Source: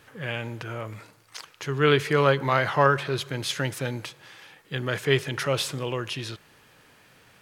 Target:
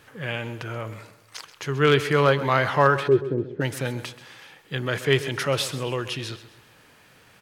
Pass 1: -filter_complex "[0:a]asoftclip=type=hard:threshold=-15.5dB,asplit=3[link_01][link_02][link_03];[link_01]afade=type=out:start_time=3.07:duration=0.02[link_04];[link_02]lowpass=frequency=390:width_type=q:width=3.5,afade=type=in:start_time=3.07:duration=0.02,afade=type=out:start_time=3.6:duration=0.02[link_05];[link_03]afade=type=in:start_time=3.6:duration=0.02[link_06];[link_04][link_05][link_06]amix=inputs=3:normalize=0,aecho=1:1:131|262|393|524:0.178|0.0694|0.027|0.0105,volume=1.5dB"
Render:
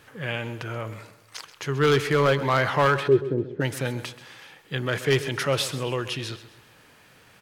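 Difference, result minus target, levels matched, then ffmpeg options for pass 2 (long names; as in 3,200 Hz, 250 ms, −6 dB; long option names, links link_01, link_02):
hard clipping: distortion +18 dB
-filter_complex "[0:a]asoftclip=type=hard:threshold=-8.5dB,asplit=3[link_01][link_02][link_03];[link_01]afade=type=out:start_time=3.07:duration=0.02[link_04];[link_02]lowpass=frequency=390:width_type=q:width=3.5,afade=type=in:start_time=3.07:duration=0.02,afade=type=out:start_time=3.6:duration=0.02[link_05];[link_03]afade=type=in:start_time=3.6:duration=0.02[link_06];[link_04][link_05][link_06]amix=inputs=3:normalize=0,aecho=1:1:131|262|393|524:0.178|0.0694|0.027|0.0105,volume=1.5dB"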